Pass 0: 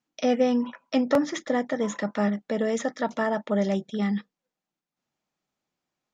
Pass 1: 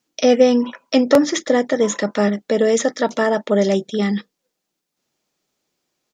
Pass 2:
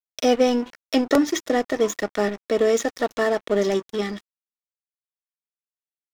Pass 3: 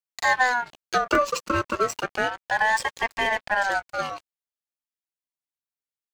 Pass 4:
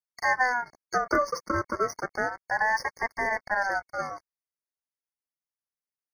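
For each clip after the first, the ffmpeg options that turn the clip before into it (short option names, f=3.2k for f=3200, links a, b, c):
-af "firequalizer=gain_entry='entry(200,0);entry(400,7);entry(770,0);entry(4600,8)':delay=0.05:min_phase=1,volume=5.5dB"
-af "aecho=1:1:2.7:0.45,aeval=exprs='sgn(val(0))*max(abs(val(0))-0.0335,0)':c=same,volume=-3dB"
-af "aeval=exprs='val(0)*sin(2*PI*1100*n/s+1100*0.25/0.33*sin(2*PI*0.33*n/s))':c=same"
-af "afftfilt=real='re*eq(mod(floor(b*sr/1024/2200),2),0)':imag='im*eq(mod(floor(b*sr/1024/2200),2),0)':win_size=1024:overlap=0.75,volume=-3.5dB"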